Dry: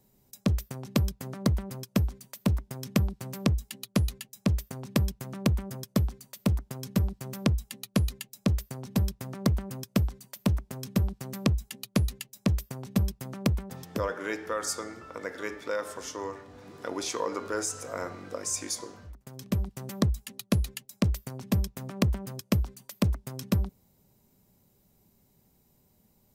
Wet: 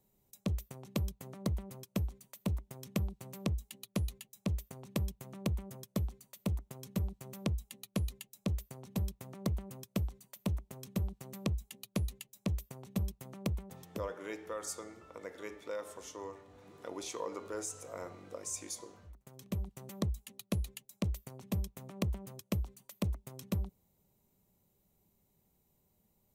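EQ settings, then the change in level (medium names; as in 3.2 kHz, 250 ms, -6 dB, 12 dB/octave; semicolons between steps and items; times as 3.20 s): dynamic bell 1.5 kHz, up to -4 dB, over -51 dBFS, Q 1.5; graphic EQ with 31 bands 125 Hz -4 dB, 250 Hz -5 dB, 1.6 kHz -4 dB, 5 kHz -6 dB; -7.5 dB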